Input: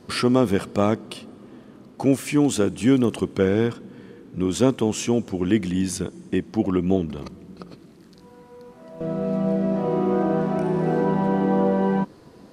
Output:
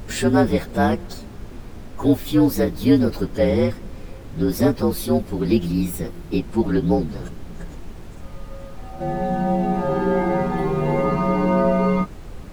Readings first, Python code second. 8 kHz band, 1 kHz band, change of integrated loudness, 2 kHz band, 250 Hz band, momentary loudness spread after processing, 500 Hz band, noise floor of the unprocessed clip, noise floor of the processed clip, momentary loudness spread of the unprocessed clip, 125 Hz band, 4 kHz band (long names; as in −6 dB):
−3.0 dB, +4.0 dB, +2.0 dB, +3.0 dB, +1.5 dB, 21 LU, +1.5 dB, −49 dBFS, −38 dBFS, 12 LU, +3.0 dB, −1.0 dB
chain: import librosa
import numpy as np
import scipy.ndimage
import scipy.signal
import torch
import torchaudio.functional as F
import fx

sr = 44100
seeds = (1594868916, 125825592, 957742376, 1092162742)

y = fx.partial_stretch(x, sr, pct=117)
y = fx.dmg_noise_colour(y, sr, seeds[0], colour='brown', level_db=-37.0)
y = y * librosa.db_to_amplitude(3.5)